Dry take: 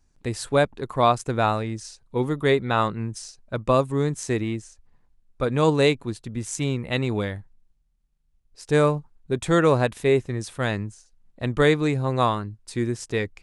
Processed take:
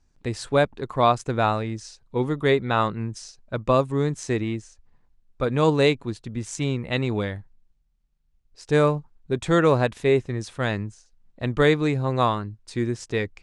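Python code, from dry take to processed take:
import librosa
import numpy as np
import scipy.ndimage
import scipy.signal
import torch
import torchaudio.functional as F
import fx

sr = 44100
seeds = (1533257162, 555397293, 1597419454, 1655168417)

y = scipy.signal.sosfilt(scipy.signal.butter(2, 7100.0, 'lowpass', fs=sr, output='sos'), x)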